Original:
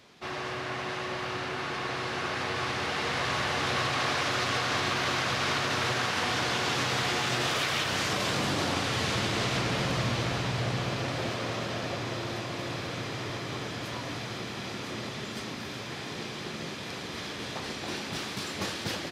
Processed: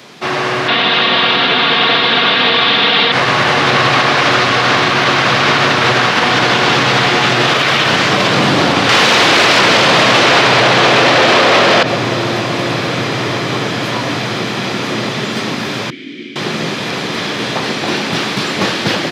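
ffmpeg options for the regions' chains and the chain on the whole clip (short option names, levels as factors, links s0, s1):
-filter_complex "[0:a]asettb=1/sr,asplit=3[s0][s1][s2];[s0]atrim=end=0.684[s3];[s1]atrim=start=0.68:end=3.12,asetpts=PTS-STARTPTS,afade=t=in:d=0.004:c=qsin,afade=t=out:st=2.436:d=0.004:c=qsin,lowpass=f=3600:t=q:w=4.8,aecho=1:1:4.3:0.6,atrim=end_sample=107604[s4];[s2]atrim=start=3.116[s5];[s3][s4]acrossfade=d=0.004:c1=hsin:c2=qsin[s6];[s6][s5]acrossfade=d=0.004:c1=qsin:c2=hsin,asettb=1/sr,asplit=3[s7][s8][s9];[s7]atrim=end=8.894[s10];[s8]atrim=start=8.89:end=11.83,asetpts=PTS-STARTPTS,afade=t=in:d=0.004:c=qsin,afade=t=out:st=2.936:d=0.004:c=qsin,acrossover=split=9100[s11][s12];[s12]acompressor=threshold=0.00126:ratio=4:attack=1:release=60[s13];[s11][s13]amix=inputs=2:normalize=0,bass=f=250:g=-14,treble=f=4000:g=1,aeval=exprs='0.133*sin(PI/2*5.01*val(0)/0.133)':c=same[s14];[s9]atrim=start=11.826[s15];[s10][s14]acrossfade=d=0.004:c1=hsin:c2=qsin[s16];[s16][s15]acrossfade=d=0.004:c1=qsin:c2=hsin,asettb=1/sr,asplit=3[s17][s18][s19];[s17]atrim=end=15.904[s20];[s18]atrim=start=15.9:end=16.36,asetpts=PTS-STARTPTS,afade=t=in:d=0.004:c=qsin,afade=t=out:st=0.456:d=0.004:c=qsin,asplit=3[s21][s22][s23];[s21]bandpass=f=270:t=q:w=8,volume=1[s24];[s22]bandpass=f=2290:t=q:w=8,volume=0.501[s25];[s23]bandpass=f=3010:t=q:w=8,volume=0.355[s26];[s24][s25][s26]amix=inputs=3:normalize=0,equalizer=f=360:t=o:w=0.22:g=8[s27];[s19]atrim=start=16.356[s28];[s20][s27]acrossfade=d=0.004:c1=hsin:c2=qsin[s29];[s29][s28]acrossfade=d=0.004:c1=qsin:c2=hsin,acrossover=split=4900[s30][s31];[s31]acompressor=threshold=0.00224:ratio=4:attack=1:release=60[s32];[s30][s32]amix=inputs=2:normalize=0,highpass=f=120:w=0.5412,highpass=f=120:w=1.3066,alimiter=level_in=10:limit=0.891:release=50:level=0:latency=1,volume=0.891"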